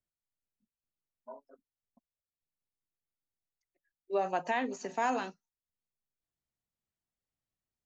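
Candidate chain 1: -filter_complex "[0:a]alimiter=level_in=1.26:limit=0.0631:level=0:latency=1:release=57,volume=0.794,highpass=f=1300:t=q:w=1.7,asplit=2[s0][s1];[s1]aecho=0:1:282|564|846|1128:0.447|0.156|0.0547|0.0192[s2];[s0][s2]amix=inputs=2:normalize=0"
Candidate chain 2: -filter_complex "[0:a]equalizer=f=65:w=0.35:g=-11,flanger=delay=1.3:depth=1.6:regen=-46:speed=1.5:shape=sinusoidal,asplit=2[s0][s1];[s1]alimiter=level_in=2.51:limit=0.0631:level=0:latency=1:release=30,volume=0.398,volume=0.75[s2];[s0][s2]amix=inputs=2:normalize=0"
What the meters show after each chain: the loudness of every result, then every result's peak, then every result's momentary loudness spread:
-40.0 LUFS, -35.5 LUFS; -24.0 dBFS, -22.0 dBFS; 21 LU, 18 LU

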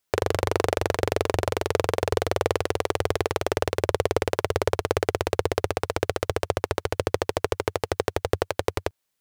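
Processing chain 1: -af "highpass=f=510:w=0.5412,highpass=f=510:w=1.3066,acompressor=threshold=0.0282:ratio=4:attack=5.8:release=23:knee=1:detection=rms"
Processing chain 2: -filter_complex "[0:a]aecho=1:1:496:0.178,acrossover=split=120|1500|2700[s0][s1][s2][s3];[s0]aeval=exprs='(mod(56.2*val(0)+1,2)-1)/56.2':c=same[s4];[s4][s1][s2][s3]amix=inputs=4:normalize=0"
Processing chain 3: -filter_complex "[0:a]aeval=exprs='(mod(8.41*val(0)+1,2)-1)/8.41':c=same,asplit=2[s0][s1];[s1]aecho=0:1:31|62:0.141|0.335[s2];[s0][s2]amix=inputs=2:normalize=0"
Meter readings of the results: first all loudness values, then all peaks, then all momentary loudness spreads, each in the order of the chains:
-37.0 LUFS, -27.0 LUFS, -30.5 LUFS; -12.0 dBFS, -6.0 dBFS, -16.0 dBFS; 3 LU, 3 LU, 3 LU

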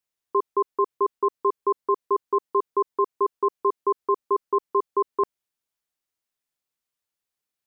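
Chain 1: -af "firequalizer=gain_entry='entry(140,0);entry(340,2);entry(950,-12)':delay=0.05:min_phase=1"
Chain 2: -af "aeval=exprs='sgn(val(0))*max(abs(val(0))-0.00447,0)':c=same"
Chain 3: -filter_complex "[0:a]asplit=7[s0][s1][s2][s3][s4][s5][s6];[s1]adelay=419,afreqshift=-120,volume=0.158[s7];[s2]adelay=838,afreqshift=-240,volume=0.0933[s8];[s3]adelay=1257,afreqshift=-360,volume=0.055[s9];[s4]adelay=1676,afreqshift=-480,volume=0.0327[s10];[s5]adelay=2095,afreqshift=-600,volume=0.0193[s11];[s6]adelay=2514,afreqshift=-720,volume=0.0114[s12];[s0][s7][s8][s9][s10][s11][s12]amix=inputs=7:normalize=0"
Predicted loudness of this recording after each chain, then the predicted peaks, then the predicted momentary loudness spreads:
-28.5 LUFS, -26.0 LUFS, -25.5 LUFS; -16.5 dBFS, -13.5 dBFS, -11.5 dBFS; 2 LU, 2 LU, 7 LU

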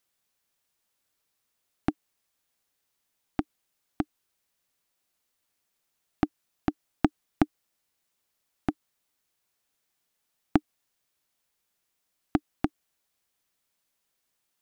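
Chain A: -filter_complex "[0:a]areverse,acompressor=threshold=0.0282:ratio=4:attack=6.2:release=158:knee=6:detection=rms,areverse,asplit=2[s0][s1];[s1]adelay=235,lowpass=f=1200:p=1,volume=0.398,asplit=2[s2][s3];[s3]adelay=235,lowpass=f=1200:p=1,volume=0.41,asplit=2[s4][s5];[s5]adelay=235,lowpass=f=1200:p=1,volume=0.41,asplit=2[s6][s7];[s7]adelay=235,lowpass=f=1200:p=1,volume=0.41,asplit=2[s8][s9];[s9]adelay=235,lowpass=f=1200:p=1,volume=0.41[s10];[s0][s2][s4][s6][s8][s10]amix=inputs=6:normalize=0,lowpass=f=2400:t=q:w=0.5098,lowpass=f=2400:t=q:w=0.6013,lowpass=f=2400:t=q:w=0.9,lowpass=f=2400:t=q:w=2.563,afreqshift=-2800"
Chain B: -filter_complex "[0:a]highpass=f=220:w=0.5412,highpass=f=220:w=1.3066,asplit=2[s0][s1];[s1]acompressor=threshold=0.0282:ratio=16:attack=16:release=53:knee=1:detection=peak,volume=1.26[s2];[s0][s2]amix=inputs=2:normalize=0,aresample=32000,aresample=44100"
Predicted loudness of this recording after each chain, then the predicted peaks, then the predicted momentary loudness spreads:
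-40.0 LUFS, -30.0 LUFS; -21.0 dBFS, -1.5 dBFS; 18 LU, 5 LU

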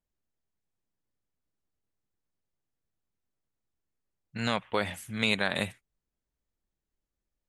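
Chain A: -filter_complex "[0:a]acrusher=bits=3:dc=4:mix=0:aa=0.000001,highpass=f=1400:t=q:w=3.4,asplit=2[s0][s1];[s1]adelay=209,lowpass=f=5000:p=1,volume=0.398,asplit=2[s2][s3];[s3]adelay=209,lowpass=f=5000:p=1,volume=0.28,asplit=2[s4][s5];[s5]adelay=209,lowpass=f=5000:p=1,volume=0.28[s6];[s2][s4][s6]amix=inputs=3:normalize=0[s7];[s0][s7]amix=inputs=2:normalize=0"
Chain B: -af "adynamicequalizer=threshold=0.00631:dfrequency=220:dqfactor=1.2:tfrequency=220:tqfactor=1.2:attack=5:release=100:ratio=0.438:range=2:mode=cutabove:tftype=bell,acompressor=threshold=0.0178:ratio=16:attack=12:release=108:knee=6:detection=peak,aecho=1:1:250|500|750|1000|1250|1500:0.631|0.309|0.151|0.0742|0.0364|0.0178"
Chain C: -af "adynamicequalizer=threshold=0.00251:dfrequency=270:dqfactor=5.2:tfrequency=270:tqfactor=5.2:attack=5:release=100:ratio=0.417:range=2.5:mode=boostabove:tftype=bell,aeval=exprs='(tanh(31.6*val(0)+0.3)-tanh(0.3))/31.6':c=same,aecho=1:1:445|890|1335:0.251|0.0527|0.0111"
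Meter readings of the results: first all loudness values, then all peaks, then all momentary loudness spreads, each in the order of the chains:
-32.0 LUFS, -38.0 LUFS, -37.5 LUFS; -4.0 dBFS, -16.5 dBFS, -25.5 dBFS; 16 LU, 15 LU, 14 LU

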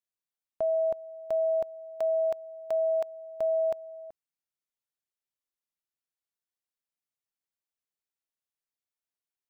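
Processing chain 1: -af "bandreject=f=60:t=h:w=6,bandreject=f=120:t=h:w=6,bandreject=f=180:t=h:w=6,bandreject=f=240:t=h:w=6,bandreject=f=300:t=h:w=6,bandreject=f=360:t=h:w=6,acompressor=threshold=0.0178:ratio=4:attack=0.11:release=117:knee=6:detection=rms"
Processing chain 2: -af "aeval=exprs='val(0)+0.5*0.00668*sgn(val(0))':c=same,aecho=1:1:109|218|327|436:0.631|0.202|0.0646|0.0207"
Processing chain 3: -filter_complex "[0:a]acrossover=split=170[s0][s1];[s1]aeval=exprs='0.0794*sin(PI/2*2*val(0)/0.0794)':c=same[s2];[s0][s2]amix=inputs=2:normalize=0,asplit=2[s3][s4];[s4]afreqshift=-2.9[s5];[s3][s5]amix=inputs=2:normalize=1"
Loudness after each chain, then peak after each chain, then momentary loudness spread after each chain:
-38.5 LUFS, -32.5 LUFS, -31.0 LUFS; -31.5 dBFS, -22.0 dBFS, -20.5 dBFS; 6 LU, 18 LU, 6 LU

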